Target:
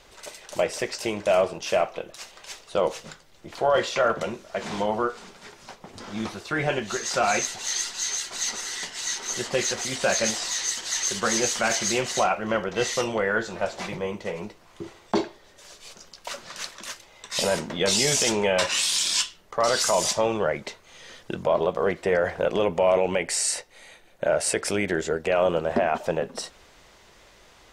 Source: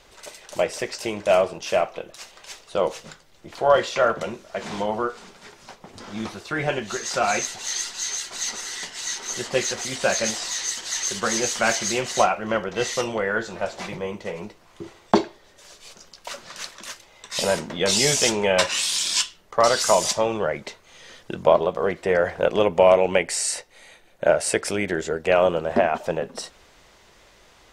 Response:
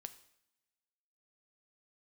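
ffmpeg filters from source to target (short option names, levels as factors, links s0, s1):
-af "alimiter=limit=0.251:level=0:latency=1:release=18"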